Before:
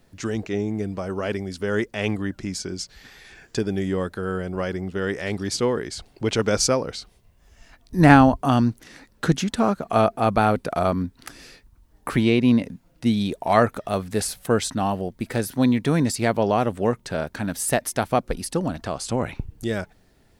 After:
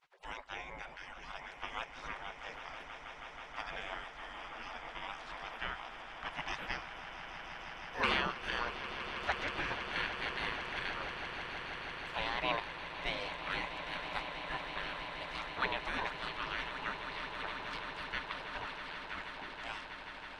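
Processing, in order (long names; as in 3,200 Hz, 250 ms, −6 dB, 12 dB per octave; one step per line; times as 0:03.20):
gate on every frequency bin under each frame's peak −30 dB weak
low-pass filter 1,900 Hz 12 dB per octave
echo that builds up and dies away 161 ms, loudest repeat 8, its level −13 dB
level +9 dB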